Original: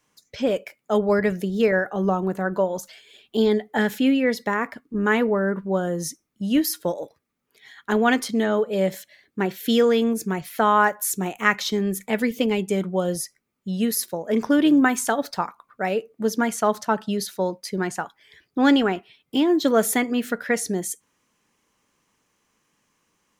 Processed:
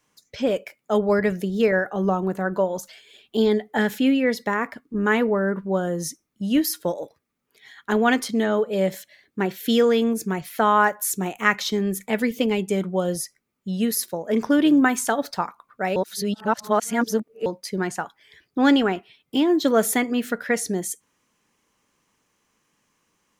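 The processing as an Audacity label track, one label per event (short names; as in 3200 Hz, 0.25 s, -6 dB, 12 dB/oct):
15.960000	17.460000	reverse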